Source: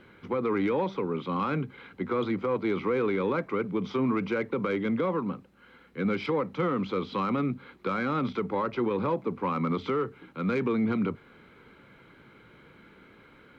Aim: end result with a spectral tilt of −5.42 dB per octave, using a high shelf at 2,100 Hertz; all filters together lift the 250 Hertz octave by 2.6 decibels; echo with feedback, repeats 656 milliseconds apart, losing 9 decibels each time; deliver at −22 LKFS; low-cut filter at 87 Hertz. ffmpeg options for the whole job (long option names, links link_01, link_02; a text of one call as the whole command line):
ffmpeg -i in.wav -af "highpass=87,equalizer=frequency=250:width_type=o:gain=3.5,highshelf=frequency=2100:gain=-7,aecho=1:1:656|1312|1968|2624:0.355|0.124|0.0435|0.0152,volume=6dB" out.wav